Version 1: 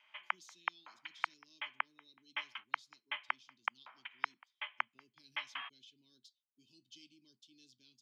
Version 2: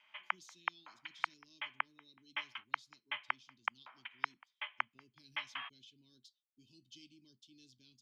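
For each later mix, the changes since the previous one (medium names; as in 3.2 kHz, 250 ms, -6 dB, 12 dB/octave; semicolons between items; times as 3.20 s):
speech: remove high-pass 310 Hz 6 dB/octave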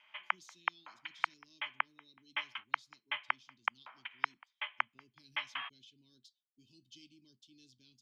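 background +3.0 dB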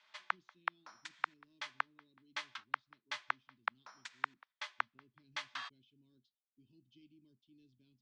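background: remove rippled Chebyshev low-pass 3.2 kHz, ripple 6 dB; master: add tape spacing loss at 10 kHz 42 dB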